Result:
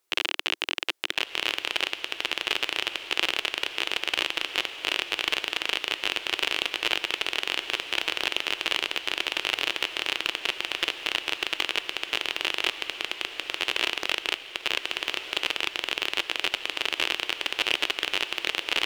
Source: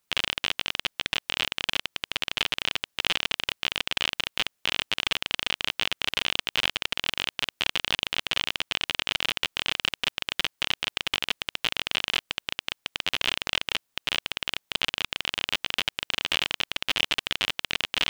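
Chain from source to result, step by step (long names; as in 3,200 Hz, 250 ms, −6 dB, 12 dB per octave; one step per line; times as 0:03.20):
low shelf with overshoot 280 Hz −8 dB, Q 3
feedback delay with all-pass diffusion 1,253 ms, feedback 40%, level −10 dB
wrong playback speed 25 fps video run at 24 fps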